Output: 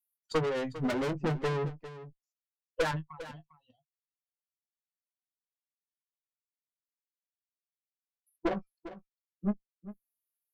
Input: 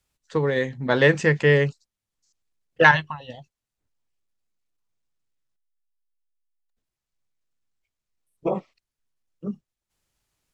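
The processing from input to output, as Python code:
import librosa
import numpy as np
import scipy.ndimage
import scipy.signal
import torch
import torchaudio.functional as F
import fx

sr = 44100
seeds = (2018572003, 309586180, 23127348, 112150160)

p1 = fx.bin_expand(x, sr, power=2.0)
p2 = fx.env_lowpass_down(p1, sr, base_hz=490.0, full_db=-21.5)
p3 = scipy.signal.sosfilt(scipy.signal.butter(2, 120.0, 'highpass', fs=sr, output='sos'), p2)
p4 = fx.peak_eq(p3, sr, hz=1400.0, db=7.5, octaves=0.46)
p5 = fx.rider(p4, sr, range_db=5, speed_s=2.0)
p6 = p4 + (p5 * librosa.db_to_amplitude(2.0))
p7 = fx.tube_stage(p6, sr, drive_db=31.0, bias=0.55)
p8 = fx.transient(p7, sr, attack_db=8, sustain_db=2)
p9 = fx.doubler(p8, sr, ms=19.0, db=-12)
y = p9 + fx.echo_single(p9, sr, ms=401, db=-14.5, dry=0)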